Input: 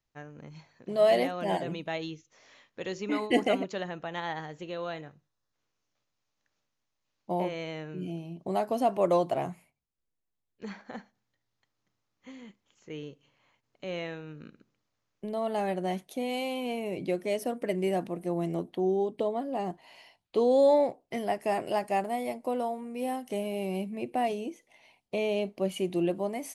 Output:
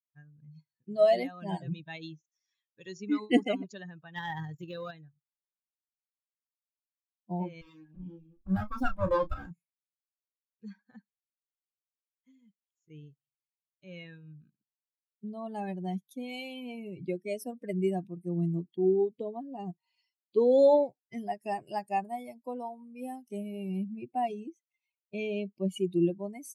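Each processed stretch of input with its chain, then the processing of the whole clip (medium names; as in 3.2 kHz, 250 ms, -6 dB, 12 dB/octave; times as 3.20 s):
4.16–4.91 s: AM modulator 42 Hz, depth 35% + waveshaping leveller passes 2
7.61–9.51 s: comb filter that takes the minimum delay 3.7 ms + treble shelf 6.1 kHz -5.5 dB + doubling 32 ms -5 dB
whole clip: expander on every frequency bin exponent 2; bass shelf 310 Hz +9.5 dB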